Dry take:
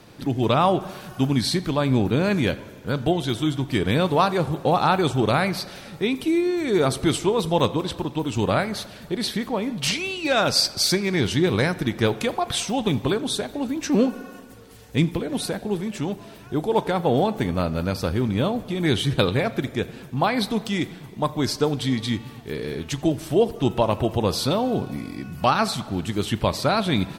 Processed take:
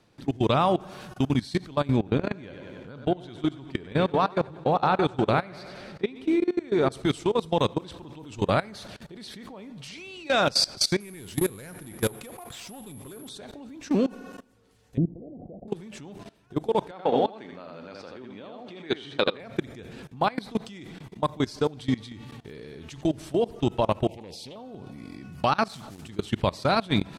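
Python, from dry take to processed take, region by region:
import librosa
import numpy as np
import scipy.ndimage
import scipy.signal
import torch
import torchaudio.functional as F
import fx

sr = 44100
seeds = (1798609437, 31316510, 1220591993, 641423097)

y = fx.chain(x, sr, fx.lowpass(hz=2500.0, slope=6),
    fx.low_shelf(hz=170.0, db=-3.5),
    fx.echo_feedback(ms=96, feedback_pct=58, wet_db=-10.0), at=(1.96, 6.92))
y = fx.chain(y, sr, fx.resample_bad(factor=4, down='none', up='zero_stuff'),
    fx.high_shelf(hz=5600.0, db=-8.5),
    fx.clip_hard(threshold_db=-14.5), at=(11.0, 13.29))
y = fx.chain(y, sr, fx.cheby1_lowpass(hz=700.0, order=5),
    fx.notch(hz=430.0, q=7.6), at=(14.97, 15.68))
y = fx.chain(y, sr, fx.bandpass_edges(low_hz=300.0, high_hz=4500.0),
    fx.echo_single(ms=81, db=-4.0), at=(16.91, 19.4))
y = fx.chain(y, sr, fx.cheby1_bandstop(low_hz=900.0, high_hz=2000.0, order=5),
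    fx.low_shelf(hz=160.0, db=-8.5),
    fx.doppler_dist(depth_ms=0.34), at=(24.07, 24.56))
y = fx.chain(y, sr, fx.over_compress(threshold_db=-37.0, ratio=-1.0),
    fx.quant_dither(seeds[0], bits=8, dither='triangular'), at=(25.68, 26.09))
y = scipy.signal.sosfilt(scipy.signal.butter(2, 10000.0, 'lowpass', fs=sr, output='sos'), y)
y = fx.level_steps(y, sr, step_db=21)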